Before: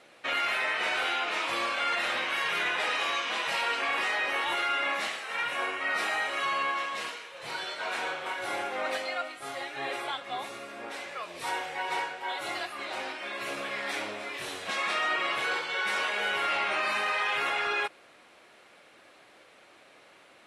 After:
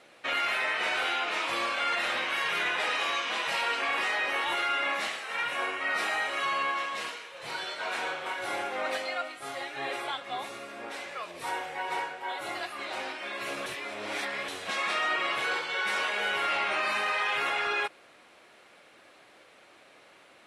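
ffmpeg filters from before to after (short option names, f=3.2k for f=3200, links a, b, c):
-filter_complex "[0:a]asettb=1/sr,asplit=3[a][b][c];[a]atrim=end=11.314[d];[b]atrim=start=11.31:end=12.63,asetpts=PTS-STARTPTS,afade=t=in:d=0.004:c=qsin,afade=t=out:st=1.316:d=0.004:c=qsin,equalizer=f=4.5k:w=0.55:g=-4[e];[c]atrim=start=12.626[f];[d][e]acrossfade=d=0.004:c1=hsin:c2=qsin[g];[g][f]acrossfade=d=0.004:c1=qsin:c2=hsin,asplit=3[h][i][j];[h]atrim=end=13.662[k];[i]atrim=start=13.658:end=14.482,asetpts=PTS-STARTPTS,areverse[l];[j]atrim=start=14.478[m];[k][l]acrossfade=d=0.004:c1=hsin:c2=hsin[n];[n][m]acrossfade=d=0.004:c1=hsin:c2=hsin"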